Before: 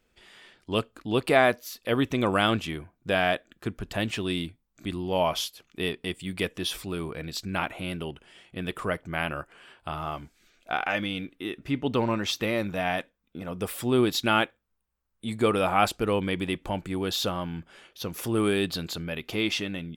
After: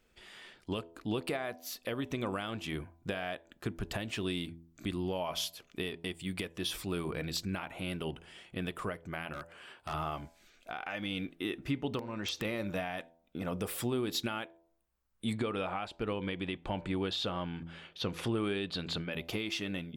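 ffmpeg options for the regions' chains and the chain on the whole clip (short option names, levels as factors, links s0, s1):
-filter_complex "[0:a]asettb=1/sr,asplit=3[s0][s1][s2];[s0]atrim=end=9.334[s3];[s1]atrim=start=9.33:end=9.94,asetpts=PTS-STARTPTS,afade=t=in:d=0.004:c=qsin,afade=t=out:st=0.606:d=0.004:c=qsin,highpass=f=110:p=1,asoftclip=type=hard:threshold=0.0251[s4];[s2]atrim=start=9.936[s5];[s3][s4]acrossfade=d=0.004:c1=hsin:c2=qsin[s6];[s6][s5]acrossfade=d=0.004:c1=qsin:c2=hsin,asettb=1/sr,asplit=3[s7][s8][s9];[s7]atrim=end=11.994[s10];[s8]atrim=start=11.99:end=12.45,asetpts=PTS-STARTPTS,afade=t=in:d=0.004:c=qsin,afade=t=out:st=0.456:d=0.004:c=qsin,lowpass=7800,acompressor=threshold=0.0282:ratio=8:attack=3.2:release=140:knee=1:detection=peak,aeval=exprs='(mod(16.8*val(0)+1,2)-1)/16.8':c=same[s11];[s9]atrim=start=12.446[s12];[s10][s11]acrossfade=d=0.004:c1=hsin:c2=qsin[s13];[s13][s12]acrossfade=d=0.004:c1=qsin:c2=hsin,asettb=1/sr,asplit=3[s14][s15][s16];[s14]atrim=end=15.334[s17];[s15]atrim=start=15.33:end=19.13,asetpts=PTS-STARTPTS,afade=t=in:d=0.004:c=qsin,afade=t=out:st=3.796:d=0.004:c=qsin,lowpass=f=9800:w=0.5412,lowpass=f=9800:w=1.3066,highshelf=f=4800:t=q:w=1.5:g=-7[s18];[s16]atrim=start=19.126[s19];[s17][s18]acrossfade=d=0.004:c1=hsin:c2=qsin[s20];[s20][s19]acrossfade=d=0.004:c1=qsin:c2=hsin,acompressor=threshold=0.0398:ratio=6,bandreject=f=83.42:t=h:w=4,bandreject=f=166.84:t=h:w=4,bandreject=f=250.26:t=h:w=4,bandreject=f=333.68:t=h:w=4,bandreject=f=417.1:t=h:w=4,bandreject=f=500.52:t=h:w=4,bandreject=f=583.94:t=h:w=4,bandreject=f=667.36:t=h:w=4,bandreject=f=750.78:t=h:w=4,bandreject=f=834.2:t=h:w=4,bandreject=f=917.62:t=h:w=4,bandreject=f=1001.04:t=h:w=4,alimiter=limit=0.0668:level=0:latency=1:release=453"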